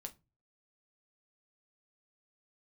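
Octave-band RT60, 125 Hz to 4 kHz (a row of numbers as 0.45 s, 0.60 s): 0.55 s, 0.40 s, 0.25 s, 0.25 s, 0.20 s, 0.20 s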